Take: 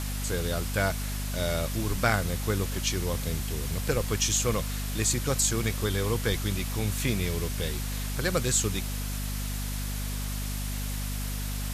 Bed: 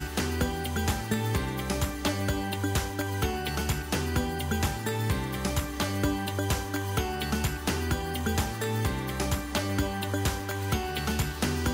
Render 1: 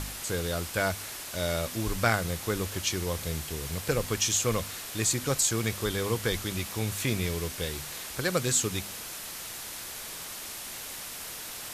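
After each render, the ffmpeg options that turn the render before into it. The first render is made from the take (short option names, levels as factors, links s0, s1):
-af "bandreject=f=50:t=h:w=4,bandreject=f=100:t=h:w=4,bandreject=f=150:t=h:w=4,bandreject=f=200:t=h:w=4,bandreject=f=250:t=h:w=4"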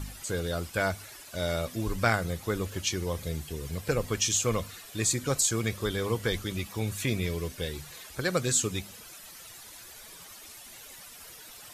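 -af "afftdn=nr=12:nf=-40"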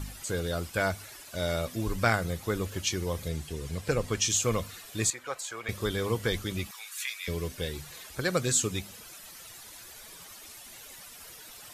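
-filter_complex "[0:a]asettb=1/sr,asplit=3[s0][s1][s2];[s0]atrim=end=3.284[s3];[s1]atrim=start=3.28:end=4.29,asetpts=PTS-STARTPTS,afade=t=in:d=0.004:c=qsin,afade=t=out:st=1.006:d=0.004:c=qsin,lowpass=11000[s4];[s2]atrim=start=4.286[s5];[s3][s4]acrossfade=d=0.004:c1=hsin:c2=qsin[s6];[s6][s5]acrossfade=d=0.004:c1=qsin:c2=hsin,asettb=1/sr,asplit=3[s7][s8][s9];[s7]atrim=end=5.104[s10];[s8]atrim=start=5.1:end=5.69,asetpts=PTS-STARTPTS,afade=t=in:d=0.004:c=qsin,afade=t=out:st=0.586:d=0.004:c=qsin,acrossover=split=550 2800:gain=0.0631 1 0.2[s11][s12][s13];[s11][s12][s13]amix=inputs=3:normalize=0[s14];[s9]atrim=start=5.686[s15];[s10][s14]acrossfade=d=0.004:c1=hsin:c2=qsin[s16];[s16][s15]acrossfade=d=0.004:c1=qsin:c2=hsin,asettb=1/sr,asplit=3[s17][s18][s19];[s17]atrim=end=6.714[s20];[s18]atrim=start=6.71:end=7.28,asetpts=PTS-STARTPTS,afade=t=in:d=0.004:c=qsin,afade=t=out:st=0.566:d=0.004:c=qsin,highpass=f=1200:w=0.5412,highpass=f=1200:w=1.3066[s21];[s19]atrim=start=7.276[s22];[s20][s21]acrossfade=d=0.004:c1=hsin:c2=qsin[s23];[s23][s22]acrossfade=d=0.004:c1=qsin:c2=hsin"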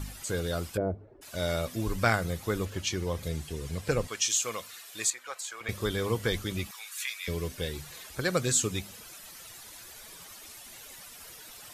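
-filter_complex "[0:a]asplit=3[s0][s1][s2];[s0]afade=t=out:st=0.76:d=0.02[s3];[s1]lowpass=f=430:t=q:w=2.2,afade=t=in:st=0.76:d=0.02,afade=t=out:st=1.21:d=0.02[s4];[s2]afade=t=in:st=1.21:d=0.02[s5];[s3][s4][s5]amix=inputs=3:normalize=0,asettb=1/sr,asplit=3[s6][s7][s8];[s6]atrim=end=2.654[s9];[s7]atrim=start=2.65:end=3.23,asetpts=PTS-STARTPTS,afade=t=in:d=0.004:c=qsin,afade=t=out:st=0.576:d=0.004:c=qsin,highshelf=f=7400:g=-7.5[s10];[s8]atrim=start=3.226[s11];[s9][s10]acrossfade=d=0.004:c1=hsin:c2=qsin[s12];[s12][s11]acrossfade=d=0.004:c1=qsin:c2=hsin,asettb=1/sr,asplit=3[s13][s14][s15];[s13]atrim=end=4.074[s16];[s14]atrim=start=4.07:end=5.61,asetpts=PTS-STARTPTS,afade=t=in:d=0.004:c=qsin,afade=t=out:st=1.536:d=0.004:c=qsin,highpass=f=1100:p=1[s17];[s15]atrim=start=5.606[s18];[s16][s17]acrossfade=d=0.004:c1=hsin:c2=qsin[s19];[s19][s18]acrossfade=d=0.004:c1=qsin:c2=hsin"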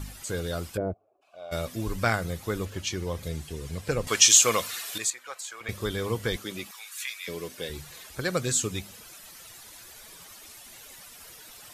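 -filter_complex "[0:a]asplit=3[s0][s1][s2];[s0]afade=t=out:st=0.92:d=0.02[s3];[s1]asplit=3[s4][s5][s6];[s4]bandpass=f=730:t=q:w=8,volume=1[s7];[s5]bandpass=f=1090:t=q:w=8,volume=0.501[s8];[s6]bandpass=f=2440:t=q:w=8,volume=0.355[s9];[s7][s8][s9]amix=inputs=3:normalize=0,afade=t=in:st=0.92:d=0.02,afade=t=out:st=1.51:d=0.02[s10];[s2]afade=t=in:st=1.51:d=0.02[s11];[s3][s10][s11]amix=inputs=3:normalize=0,asettb=1/sr,asplit=3[s12][s13][s14];[s12]atrim=end=6.364[s15];[s13]atrim=start=6.36:end=7.7,asetpts=PTS-STARTPTS,afade=t=in:d=0.004:c=qsin,afade=t=out:st=1.336:d=0.004:c=qsin,highpass=220[s16];[s14]atrim=start=7.696[s17];[s15][s16]acrossfade=d=0.004:c1=hsin:c2=qsin[s18];[s18][s17]acrossfade=d=0.004:c1=qsin:c2=hsin,asplit=3[s19][s20][s21];[s19]atrim=end=4.072[s22];[s20]atrim=start=4.068:end=4.982,asetpts=PTS-STARTPTS,volume=3.55[s23];[s21]atrim=start=4.978[s24];[s22][s23]acrossfade=d=0.004:c1=hsin:c2=hsin[s25];[s25][s24]acrossfade=d=0.004:c1=hsin:c2=hsin"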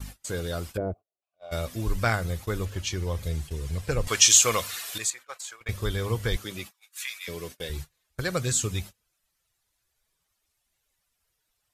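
-af "agate=range=0.0316:threshold=0.01:ratio=16:detection=peak,asubboost=boost=3.5:cutoff=110"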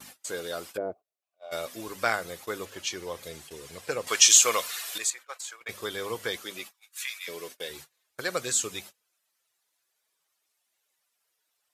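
-af "highpass=370"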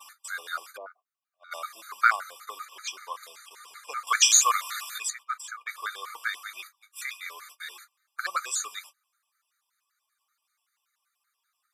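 -af "highpass=f=1200:t=q:w=4.5,afftfilt=real='re*gt(sin(2*PI*5.2*pts/sr)*(1-2*mod(floor(b*sr/1024/1200),2)),0)':imag='im*gt(sin(2*PI*5.2*pts/sr)*(1-2*mod(floor(b*sr/1024/1200),2)),0)':win_size=1024:overlap=0.75"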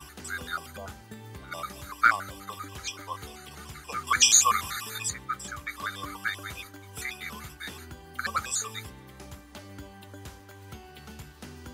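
-filter_complex "[1:a]volume=0.158[s0];[0:a][s0]amix=inputs=2:normalize=0"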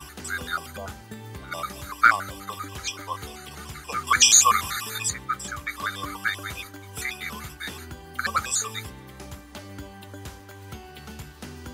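-af "volume=1.68,alimiter=limit=0.708:level=0:latency=1"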